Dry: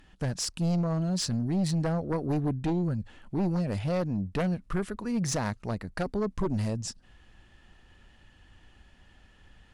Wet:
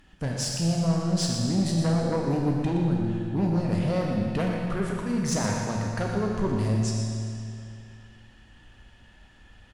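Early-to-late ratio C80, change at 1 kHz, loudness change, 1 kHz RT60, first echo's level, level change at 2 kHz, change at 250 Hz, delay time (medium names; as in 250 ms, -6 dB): 1.0 dB, +4.0 dB, +3.5 dB, 2.5 s, -8.5 dB, +4.0 dB, +4.0 dB, 120 ms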